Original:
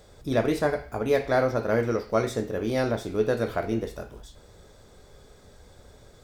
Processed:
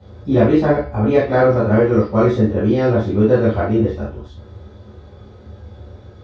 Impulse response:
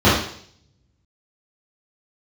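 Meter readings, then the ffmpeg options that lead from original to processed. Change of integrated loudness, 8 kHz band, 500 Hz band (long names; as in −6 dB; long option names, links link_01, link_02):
+10.5 dB, can't be measured, +9.5 dB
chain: -filter_complex "[0:a]lowpass=4900[link_01];[1:a]atrim=start_sample=2205,atrim=end_sample=3528[link_02];[link_01][link_02]afir=irnorm=-1:irlink=0,volume=-17.5dB"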